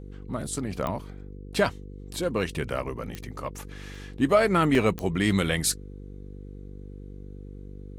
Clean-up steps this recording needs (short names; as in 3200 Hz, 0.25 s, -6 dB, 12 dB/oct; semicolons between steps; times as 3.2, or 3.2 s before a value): de-click; de-hum 49 Hz, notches 10; interpolate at 3.95/4.75, 2.1 ms